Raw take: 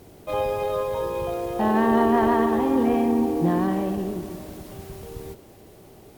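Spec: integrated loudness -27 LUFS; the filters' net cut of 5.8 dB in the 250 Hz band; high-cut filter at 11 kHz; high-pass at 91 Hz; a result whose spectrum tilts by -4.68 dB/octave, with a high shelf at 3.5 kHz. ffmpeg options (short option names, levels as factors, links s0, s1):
-af "highpass=91,lowpass=11000,equalizer=f=250:t=o:g=-7,highshelf=f=3500:g=6.5,volume=0.841"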